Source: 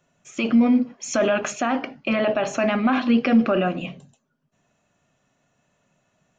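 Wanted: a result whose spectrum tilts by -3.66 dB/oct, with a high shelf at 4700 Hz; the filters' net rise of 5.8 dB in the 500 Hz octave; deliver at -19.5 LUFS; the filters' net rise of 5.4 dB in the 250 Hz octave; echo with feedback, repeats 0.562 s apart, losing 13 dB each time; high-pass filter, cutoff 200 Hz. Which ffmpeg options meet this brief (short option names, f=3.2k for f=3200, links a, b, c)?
-af "highpass=200,equalizer=f=250:t=o:g=6.5,equalizer=f=500:t=o:g=6.5,highshelf=f=4.7k:g=-3,aecho=1:1:562|1124|1686:0.224|0.0493|0.0108,volume=-3dB"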